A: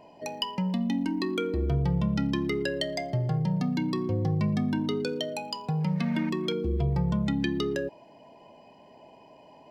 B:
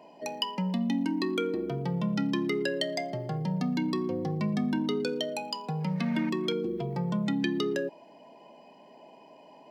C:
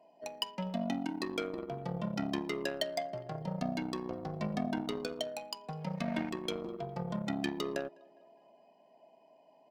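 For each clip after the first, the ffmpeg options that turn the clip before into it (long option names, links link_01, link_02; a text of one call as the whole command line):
ffmpeg -i in.wav -af "highpass=frequency=170:width=0.5412,highpass=frequency=170:width=1.3066" out.wav
ffmpeg -i in.wav -filter_complex "[0:a]asplit=2[link_01][link_02];[link_02]adelay=204,lowpass=frequency=2900:poles=1,volume=-17.5dB,asplit=2[link_03][link_04];[link_04]adelay=204,lowpass=frequency=2900:poles=1,volume=0.54,asplit=2[link_05][link_06];[link_06]adelay=204,lowpass=frequency=2900:poles=1,volume=0.54,asplit=2[link_07][link_08];[link_08]adelay=204,lowpass=frequency=2900:poles=1,volume=0.54,asplit=2[link_09][link_10];[link_10]adelay=204,lowpass=frequency=2900:poles=1,volume=0.54[link_11];[link_01][link_03][link_05][link_07][link_09][link_11]amix=inputs=6:normalize=0,aeval=exprs='0.188*(cos(1*acos(clip(val(0)/0.188,-1,1)))-cos(1*PI/2))+0.0188*(cos(7*acos(clip(val(0)/0.188,-1,1)))-cos(7*PI/2))':channel_layout=same,equalizer=frequency=670:width=5:gain=10.5,volume=-4.5dB" out.wav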